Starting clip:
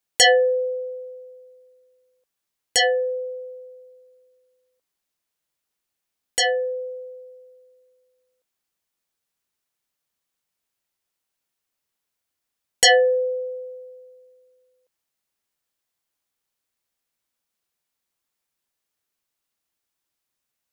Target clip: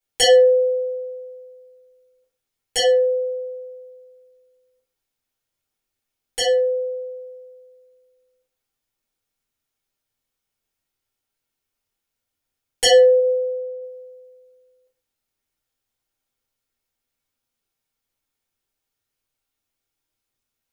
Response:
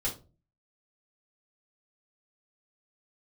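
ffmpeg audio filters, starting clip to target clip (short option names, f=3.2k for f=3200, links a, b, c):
-filter_complex "[0:a]asettb=1/sr,asplit=3[a][b][c];[a]atrim=end=13.194[d];[b]atrim=start=13.19:end=13.81,asetpts=PTS-STARTPTS,afade=t=in:d=0.004:c=qsin,afade=t=out:st=0.616:d=0.004:c=qsin,lowpass=2.2k[e];[c]atrim=start=13.806[f];[d][e]acrossfade=d=0.004:c1=hsin:c2=qsin[g];[g][f]acrossfade=d=0.004:c1=qsin:c2=hsin[h];[1:a]atrim=start_sample=2205,afade=t=out:st=0.35:d=0.01,atrim=end_sample=15876[i];[h][i]afir=irnorm=-1:irlink=0,volume=-4dB"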